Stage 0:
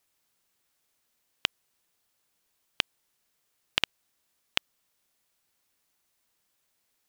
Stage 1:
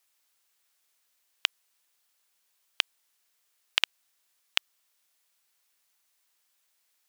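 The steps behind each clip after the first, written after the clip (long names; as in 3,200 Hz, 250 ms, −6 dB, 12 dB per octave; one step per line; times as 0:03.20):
high-pass filter 1,100 Hz 6 dB per octave
level +2.5 dB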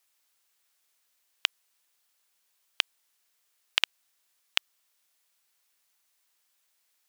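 no processing that can be heard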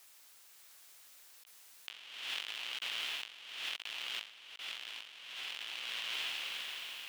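feedback delay with all-pass diffusion 585 ms, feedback 44%, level −4 dB
compressor whose output falls as the input rises −51 dBFS, ratio −1
level +3.5 dB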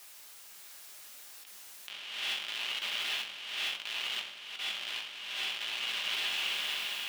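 brickwall limiter −31.5 dBFS, peak gain reduction 9 dB
rectangular room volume 300 cubic metres, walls furnished, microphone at 1.3 metres
level +7 dB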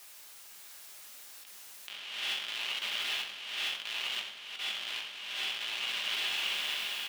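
single-tap delay 93 ms −13 dB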